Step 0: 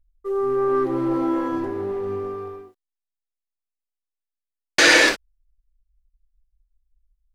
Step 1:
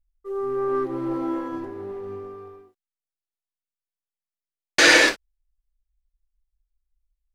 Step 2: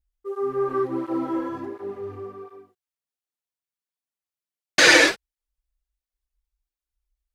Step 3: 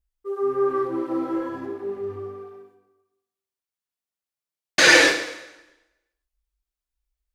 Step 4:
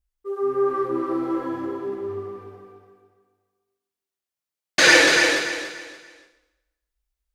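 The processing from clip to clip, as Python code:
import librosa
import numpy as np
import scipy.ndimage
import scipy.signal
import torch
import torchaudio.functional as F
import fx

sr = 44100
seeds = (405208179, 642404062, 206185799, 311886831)

y1 = fx.upward_expand(x, sr, threshold_db=-29.0, expansion=1.5)
y2 = fx.flanger_cancel(y1, sr, hz=1.4, depth_ms=5.3)
y2 = y2 * 10.0 ** (3.5 / 20.0)
y3 = fx.rev_plate(y2, sr, seeds[0], rt60_s=1.0, hf_ratio=0.95, predelay_ms=0, drr_db=5.5)
y3 = y3 * 10.0 ** (-1.0 / 20.0)
y4 = fx.echo_feedback(y3, sr, ms=288, feedback_pct=30, wet_db=-5)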